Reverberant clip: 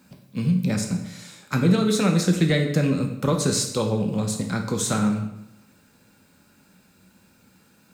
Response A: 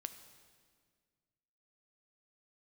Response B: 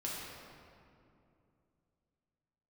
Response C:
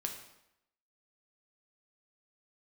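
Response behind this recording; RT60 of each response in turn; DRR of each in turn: C; 1.8, 2.6, 0.80 s; 9.0, -6.0, 2.5 dB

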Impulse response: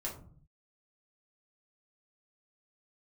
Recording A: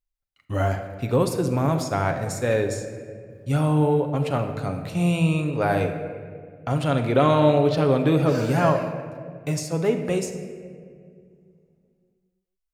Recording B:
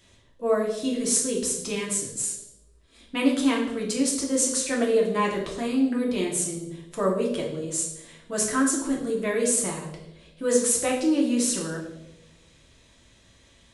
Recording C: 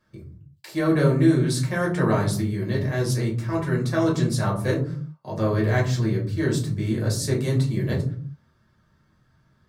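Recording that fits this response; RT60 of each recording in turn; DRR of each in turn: C; 2.1, 1.0, 0.50 s; 4.5, -2.0, -4.0 dB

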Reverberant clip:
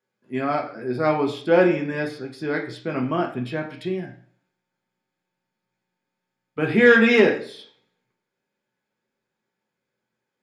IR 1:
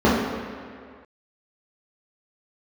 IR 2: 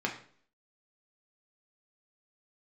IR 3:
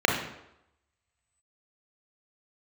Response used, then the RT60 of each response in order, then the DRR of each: 2; 2.0, 0.50, 0.85 s; -9.0, 0.0, 0.0 dB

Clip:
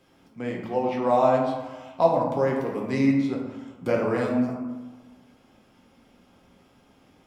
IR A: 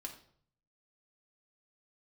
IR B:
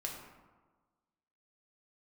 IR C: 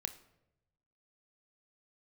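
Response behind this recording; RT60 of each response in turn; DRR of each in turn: B; 0.60, 1.4, 0.90 s; 0.5, -1.0, 7.5 dB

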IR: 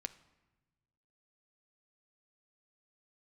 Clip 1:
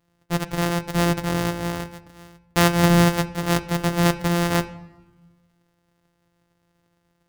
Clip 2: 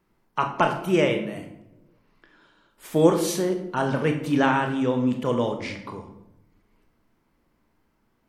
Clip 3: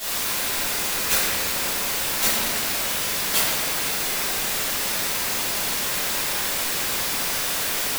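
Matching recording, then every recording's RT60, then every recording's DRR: 1; 1.2, 0.85, 2.3 s; 11.0, 4.0, -17.5 dB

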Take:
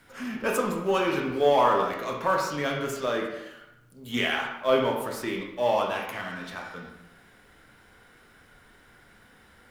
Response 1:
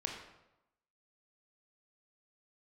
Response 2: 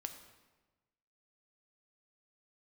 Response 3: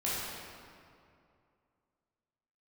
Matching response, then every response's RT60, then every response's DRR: 1; 0.90, 1.2, 2.5 s; 0.5, 6.5, -9.0 dB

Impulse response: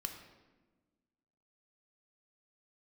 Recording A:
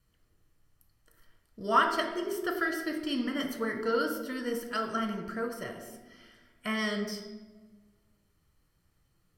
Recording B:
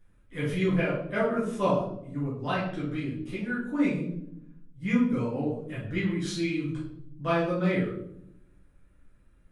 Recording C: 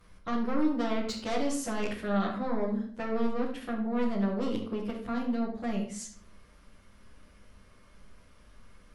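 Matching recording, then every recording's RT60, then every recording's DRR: A; 1.3, 0.70, 0.50 s; 4.0, -11.0, -7.5 dB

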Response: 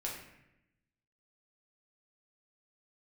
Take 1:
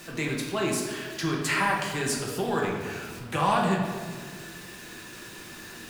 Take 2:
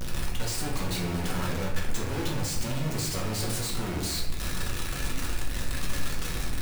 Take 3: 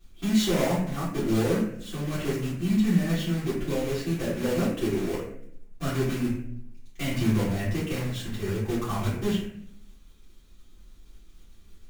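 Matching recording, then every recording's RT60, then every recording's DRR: 2; 1.6, 0.85, 0.65 s; -2.5, -3.5, -13.0 dB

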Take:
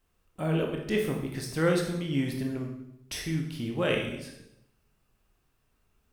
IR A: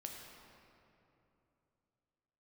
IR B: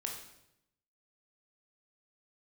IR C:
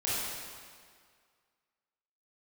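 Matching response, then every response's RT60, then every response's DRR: B; 3.0, 0.80, 1.9 s; 0.5, 0.5, -9.5 dB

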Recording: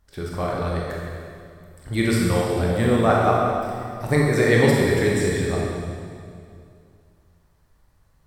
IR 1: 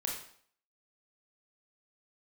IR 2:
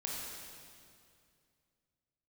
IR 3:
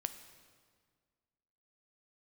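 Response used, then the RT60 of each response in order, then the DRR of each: 2; 0.55, 2.3, 1.8 s; -1.5, -3.5, 9.0 dB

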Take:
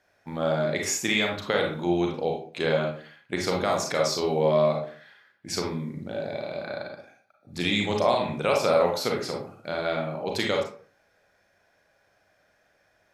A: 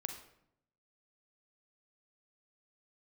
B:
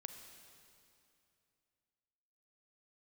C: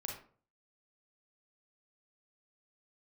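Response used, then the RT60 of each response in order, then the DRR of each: C; 0.75, 2.7, 0.45 s; 5.0, 6.0, 0.0 dB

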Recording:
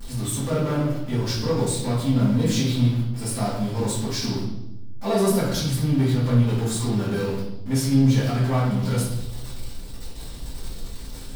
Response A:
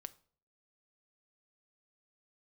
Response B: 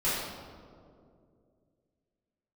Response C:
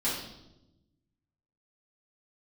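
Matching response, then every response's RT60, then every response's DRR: C; 0.50, 2.4, 0.95 s; 13.0, -13.0, -10.5 dB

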